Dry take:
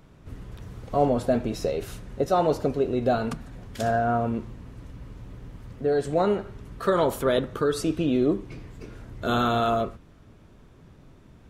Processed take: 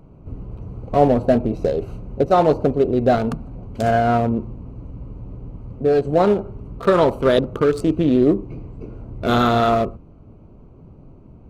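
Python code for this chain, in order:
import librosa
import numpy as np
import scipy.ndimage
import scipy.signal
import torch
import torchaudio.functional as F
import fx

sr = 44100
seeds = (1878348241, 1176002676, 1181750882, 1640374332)

y = fx.wiener(x, sr, points=25)
y = F.gain(torch.from_numpy(y), 7.5).numpy()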